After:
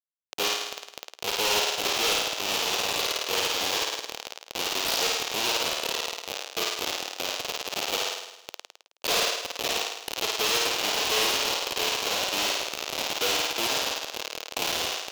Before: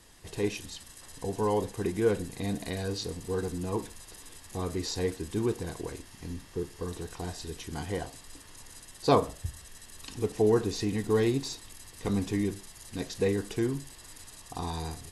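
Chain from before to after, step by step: in parallel at +2.5 dB: compressor 6:1, threshold -37 dBFS, peak gain reduction 19 dB; on the sum: diffused feedback echo 0.581 s, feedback 54%, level -7.5 dB; Schmitt trigger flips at -24 dBFS; band shelf 4200 Hz +11.5 dB; flutter echo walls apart 9.1 m, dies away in 0.88 s; limiter -16.5 dBFS, peak gain reduction 5.5 dB; HPF 530 Hz 24 dB/oct; wavefolder -23.5 dBFS; gain +7.5 dB

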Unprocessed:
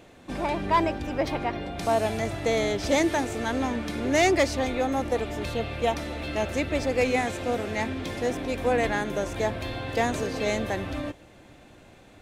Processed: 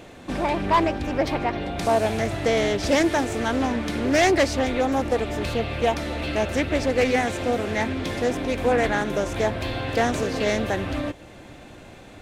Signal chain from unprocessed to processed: in parallel at -1 dB: compressor, threshold -37 dBFS, peak gain reduction 18 dB; on the sum: hard clip -14.5 dBFS, distortion -28 dB; Doppler distortion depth 0.19 ms; gain +2 dB

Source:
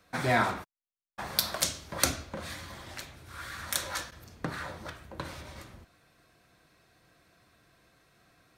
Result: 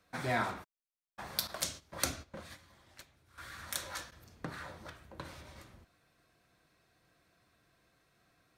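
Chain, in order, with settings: 1.47–3.38 gate -39 dBFS, range -11 dB; gain -7 dB

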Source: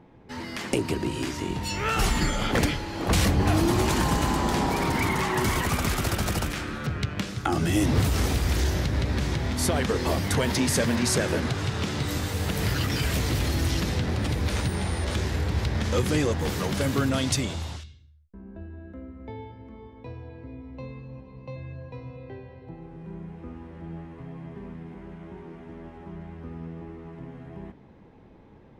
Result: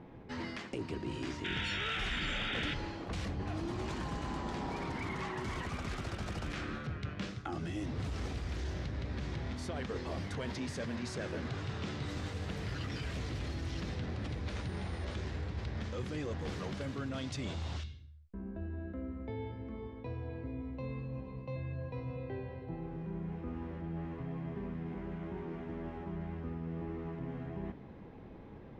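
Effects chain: notch 890 Hz, Q 23; reverse; compressor 8:1, threshold -37 dBFS, peak gain reduction 19 dB; reverse; painted sound noise, 1.44–2.74, 1300–3800 Hz -38 dBFS; hard clip -30.5 dBFS, distortion -26 dB; air absorption 94 m; gain +1.5 dB

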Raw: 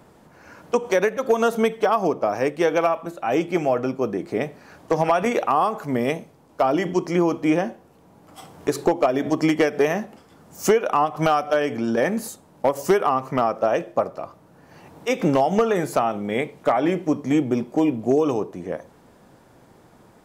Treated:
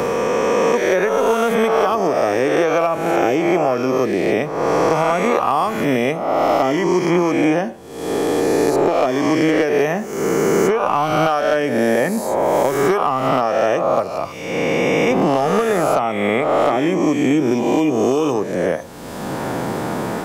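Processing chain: spectral swells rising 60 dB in 1.51 s; three-band squash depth 100%

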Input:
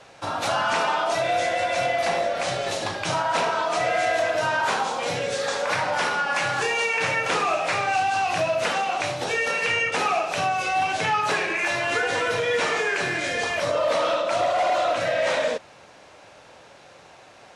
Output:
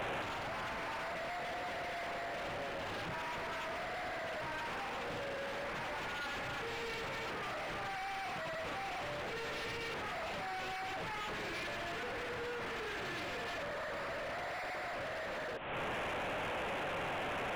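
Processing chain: delta modulation 16 kbps, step -35 dBFS; compressor, threshold -34 dBFS, peak gain reduction 11.5 dB; limiter -32 dBFS, peak gain reduction 8 dB; wavefolder -39.5 dBFS; gain +3.5 dB

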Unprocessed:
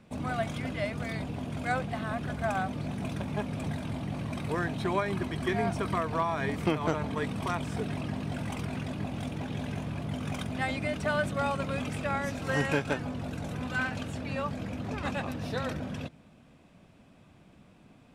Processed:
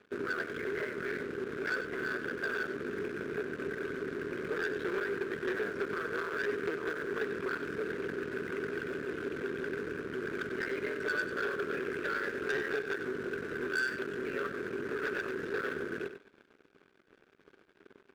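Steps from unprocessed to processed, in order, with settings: cycle switcher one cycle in 2, muted; compressor, threshold -34 dBFS, peak gain reduction 11 dB; double band-pass 790 Hz, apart 1.9 oct; sample leveller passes 3; on a send: echo 96 ms -10 dB; on the sum: gain +5 dB

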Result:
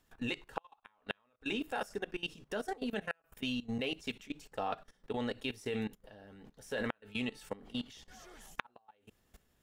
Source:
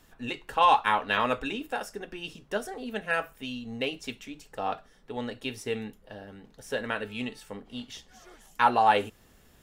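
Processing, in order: flipped gate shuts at -16 dBFS, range -39 dB; level quantiser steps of 19 dB; gain +3 dB

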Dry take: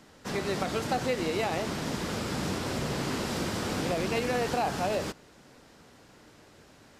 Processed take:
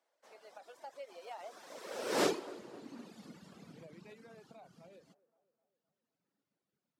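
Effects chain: Doppler pass-by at 2.23, 29 m/s, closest 1.6 m; high-pass sweep 610 Hz -> 170 Hz, 1.66–3.68; reverb removal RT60 1.8 s; band-limited delay 0.258 s, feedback 52%, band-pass 690 Hz, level -18 dB; gain +5 dB

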